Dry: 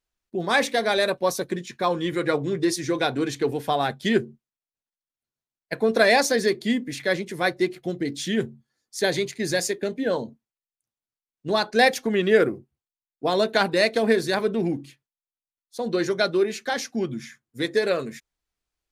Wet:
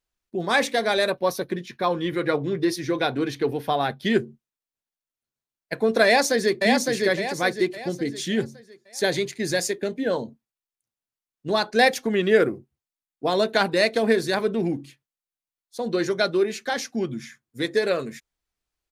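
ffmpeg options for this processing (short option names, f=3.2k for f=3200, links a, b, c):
-filter_complex "[0:a]asettb=1/sr,asplit=3[a][b][c];[a]atrim=end=1.114[d];[b]atrim=start=1.11:end=4.1,asetpts=PTS-STARTPTS,afade=t=in:d=0.004:c=qsin,afade=t=out:st=2.986:d=0.004:c=qsin,equalizer=f=7.5k:t=o:w=0.48:g=-13[e];[c]atrim=start=4.096[f];[d][e]acrossfade=d=0.004:c1=hsin:c2=qsin[g];[g][f]acrossfade=d=0.004:c1=qsin:c2=hsin,asplit=2[h][i];[i]afade=t=in:st=6.05:d=0.01,afade=t=out:st=6.61:d=0.01,aecho=0:1:560|1120|1680|2240|2800:0.707946|0.283178|0.113271|0.0453085|0.0181234[j];[h][j]amix=inputs=2:normalize=0"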